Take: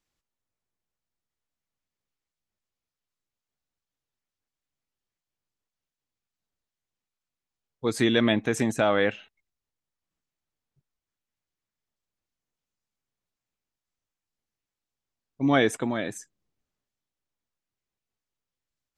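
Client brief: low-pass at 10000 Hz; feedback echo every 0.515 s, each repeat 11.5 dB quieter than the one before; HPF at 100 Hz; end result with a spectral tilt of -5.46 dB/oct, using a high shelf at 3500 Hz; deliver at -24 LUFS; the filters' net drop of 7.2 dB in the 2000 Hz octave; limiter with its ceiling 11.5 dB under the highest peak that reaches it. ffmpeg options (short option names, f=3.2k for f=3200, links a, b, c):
-af "highpass=100,lowpass=10k,equalizer=f=2k:t=o:g=-8,highshelf=f=3.5k:g=-5,alimiter=limit=-21.5dB:level=0:latency=1,aecho=1:1:515|1030|1545:0.266|0.0718|0.0194,volume=9.5dB"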